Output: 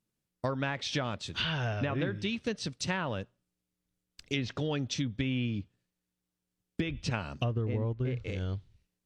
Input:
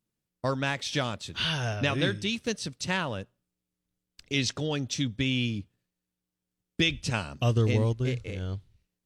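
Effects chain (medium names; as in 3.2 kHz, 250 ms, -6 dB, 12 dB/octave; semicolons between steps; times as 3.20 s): low-pass that closes with the level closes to 1.6 kHz, closed at -22.5 dBFS; compression 10:1, threshold -27 dBFS, peak gain reduction 8.5 dB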